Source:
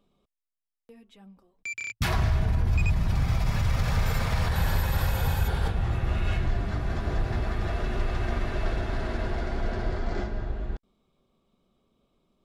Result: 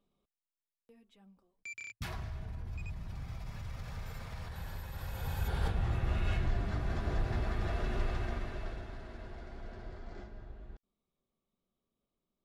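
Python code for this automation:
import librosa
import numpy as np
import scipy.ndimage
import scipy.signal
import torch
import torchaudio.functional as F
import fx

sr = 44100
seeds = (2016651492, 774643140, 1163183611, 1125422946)

y = fx.gain(x, sr, db=fx.line((1.81, -10.0), (2.26, -17.5), (4.93, -17.5), (5.63, -5.5), (8.06, -5.5), (9.04, -17.0)))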